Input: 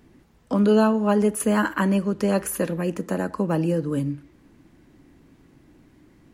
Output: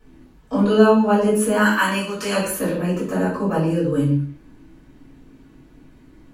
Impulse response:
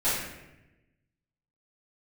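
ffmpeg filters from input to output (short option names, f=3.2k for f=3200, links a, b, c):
-filter_complex "[0:a]asplit=3[a][b][c];[a]afade=t=out:st=1.6:d=0.02[d];[b]tiltshelf=f=830:g=-10,afade=t=in:st=1.6:d=0.02,afade=t=out:st=2.35:d=0.02[e];[c]afade=t=in:st=2.35:d=0.02[f];[d][e][f]amix=inputs=3:normalize=0[g];[1:a]atrim=start_sample=2205,afade=t=out:st=0.39:d=0.01,atrim=end_sample=17640,asetrate=74970,aresample=44100[h];[g][h]afir=irnorm=-1:irlink=0,volume=-3.5dB"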